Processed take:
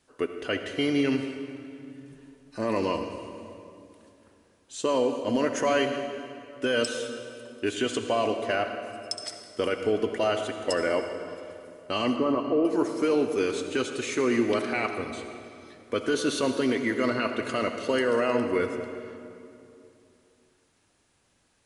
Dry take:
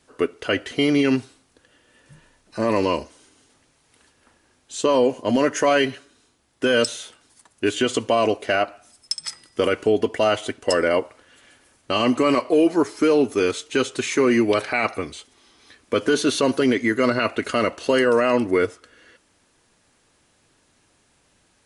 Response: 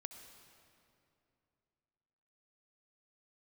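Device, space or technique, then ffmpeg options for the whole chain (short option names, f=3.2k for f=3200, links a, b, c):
stairwell: -filter_complex "[0:a]asettb=1/sr,asplit=3[a][b][c];[a]atrim=end=12.164[d];[b]atrim=start=12.16:end=12.65,asetpts=PTS-STARTPTS,afade=t=in:d=0.004:c=qsin,afade=t=out:st=0.486:d=0.004:c=qsin,lowpass=f=1.3k:w=0.5412,lowpass=f=1.3k:w=1.3066[e];[c]atrim=start=12.646[f];[d][e]acrossfade=d=0.004:c1=hsin:c2=qsin[g];[g][f]acrossfade=d=0.004:c1=qsin:c2=hsin[h];[1:a]atrim=start_sample=2205[i];[h][i]afir=irnorm=-1:irlink=0,volume=-2dB"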